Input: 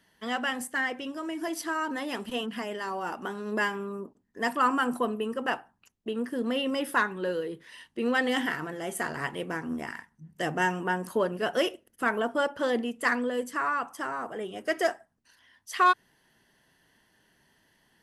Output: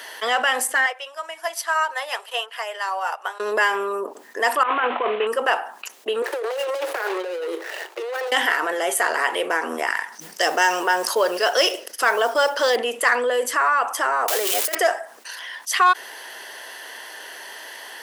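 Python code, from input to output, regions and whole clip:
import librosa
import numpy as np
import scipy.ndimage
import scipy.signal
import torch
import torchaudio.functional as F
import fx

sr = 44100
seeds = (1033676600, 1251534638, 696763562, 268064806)

y = fx.chain(x, sr, fx.highpass(hz=560.0, slope=24),
    fx.upward_expand(threshold_db=-49.0, expansion=2.5), at=(0.86, 3.4))
y = fx.chain(y, sr, fx.cvsd(bps=16000),
    fx.over_compress(threshold_db=-29.0, ratio=-0.5), at=(4.63, 5.27))
y = fx.chain(y, sr, fx.median_filter(points=41),
    fx.steep_highpass(hz=330.0, slope=96),
    fx.over_compress(threshold_db=-42.0, ratio=-1.0), at=(6.22, 8.32))
y = fx.chain(y, sr, fx.peak_eq(hz=5200.0, db=13.5, octaves=0.69),
    fx.mod_noise(seeds[0], snr_db=28), at=(10.12, 12.76))
y = fx.chain(y, sr, fx.crossing_spikes(level_db=-24.5),
    fx.over_compress(threshold_db=-34.0, ratio=-0.5), at=(14.28, 14.75))
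y = scipy.signal.sosfilt(scipy.signal.butter(4, 460.0, 'highpass', fs=sr, output='sos'), y)
y = fx.env_flatten(y, sr, amount_pct=50)
y = y * librosa.db_to_amplitude(5.0)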